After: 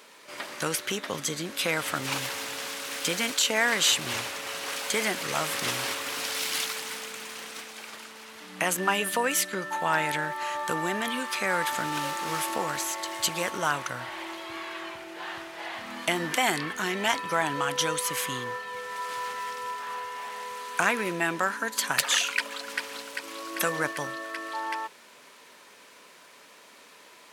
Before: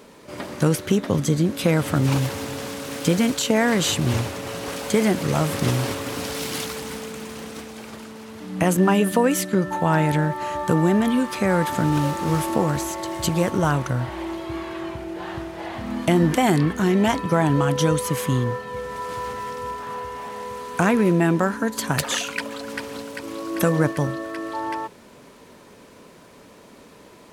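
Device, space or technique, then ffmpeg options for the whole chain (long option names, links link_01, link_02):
filter by subtraction: -filter_complex "[0:a]asplit=2[link_01][link_02];[link_02]lowpass=2100,volume=-1[link_03];[link_01][link_03]amix=inputs=2:normalize=0"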